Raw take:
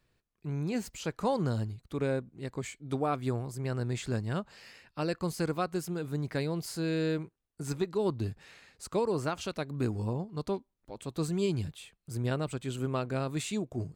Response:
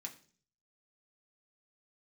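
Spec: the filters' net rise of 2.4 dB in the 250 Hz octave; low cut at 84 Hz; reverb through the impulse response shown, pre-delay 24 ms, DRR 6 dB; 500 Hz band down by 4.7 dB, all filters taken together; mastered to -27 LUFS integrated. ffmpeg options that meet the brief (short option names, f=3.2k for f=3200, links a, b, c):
-filter_complex "[0:a]highpass=84,equalizer=f=250:t=o:g=6,equalizer=f=500:t=o:g=-8.5,asplit=2[a][b];[1:a]atrim=start_sample=2205,adelay=24[c];[b][c]afir=irnorm=-1:irlink=0,volume=-2.5dB[d];[a][d]amix=inputs=2:normalize=0,volume=5.5dB"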